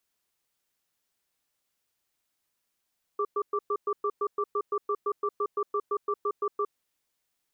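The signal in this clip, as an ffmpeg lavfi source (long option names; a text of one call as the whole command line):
ffmpeg -f lavfi -i "aevalsrc='0.0422*(sin(2*PI*412*t)+sin(2*PI*1170*t))*clip(min(mod(t,0.17),0.06-mod(t,0.17))/0.005,0,1)':duration=3.47:sample_rate=44100" out.wav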